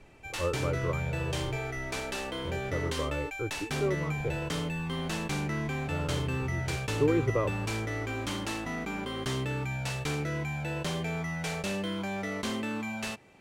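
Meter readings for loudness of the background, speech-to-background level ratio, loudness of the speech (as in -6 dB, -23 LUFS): -33.5 LUFS, -1.0 dB, -34.5 LUFS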